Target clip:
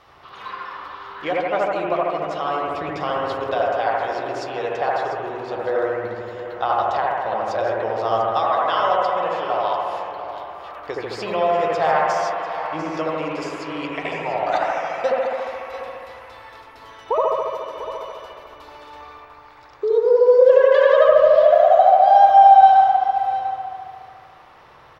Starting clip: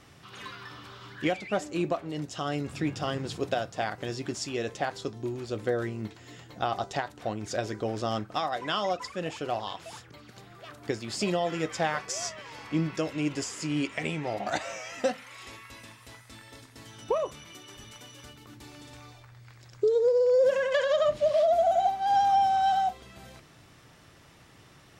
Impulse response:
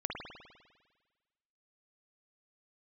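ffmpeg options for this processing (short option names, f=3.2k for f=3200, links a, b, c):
-filter_complex "[0:a]equalizer=f=125:t=o:w=1:g=-6,equalizer=f=250:t=o:w=1:g=-9,equalizer=f=500:t=o:w=1:g=5,equalizer=f=1k:t=o:w=1:g=11,equalizer=f=4k:t=o:w=1:g=5,equalizer=f=8k:t=o:w=1:g=-12,aecho=1:1:695:0.251[a];[1:a]atrim=start_sample=2205,asetrate=31311,aresample=44100[b];[a][b]afir=irnorm=-1:irlink=0,volume=-1.5dB"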